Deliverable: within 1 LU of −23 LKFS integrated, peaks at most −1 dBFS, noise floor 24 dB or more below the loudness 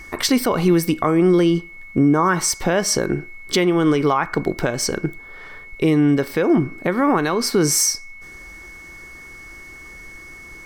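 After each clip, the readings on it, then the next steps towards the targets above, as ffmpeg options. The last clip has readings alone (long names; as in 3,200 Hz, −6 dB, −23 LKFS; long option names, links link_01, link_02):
interfering tone 2,200 Hz; level of the tone −38 dBFS; integrated loudness −18.5 LKFS; sample peak −7.0 dBFS; target loudness −23.0 LKFS
→ -af "bandreject=frequency=2200:width=30"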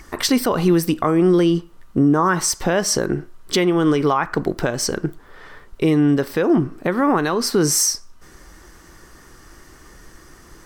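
interfering tone none found; integrated loudness −19.0 LKFS; sample peak −7.0 dBFS; target loudness −23.0 LKFS
→ -af "volume=-4dB"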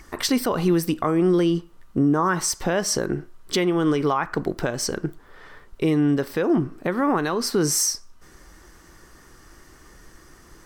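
integrated loudness −23.0 LKFS; sample peak −11.0 dBFS; background noise floor −50 dBFS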